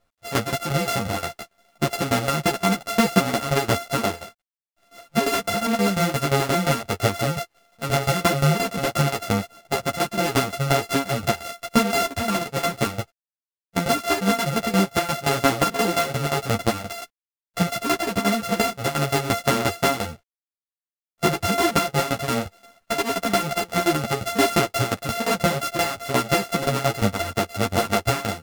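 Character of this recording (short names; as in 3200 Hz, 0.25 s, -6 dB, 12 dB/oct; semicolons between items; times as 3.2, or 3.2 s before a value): a buzz of ramps at a fixed pitch in blocks of 64 samples; tremolo saw down 5.7 Hz, depth 85%; a quantiser's noise floor 12-bit, dither none; a shimmering, thickened sound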